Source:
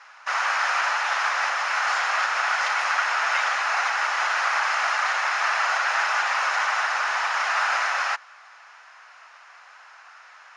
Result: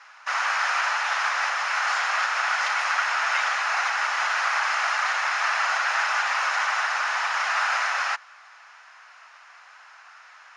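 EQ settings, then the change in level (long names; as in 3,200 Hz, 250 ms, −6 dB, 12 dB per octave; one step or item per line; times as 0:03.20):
low-shelf EQ 410 Hz −9.5 dB
0.0 dB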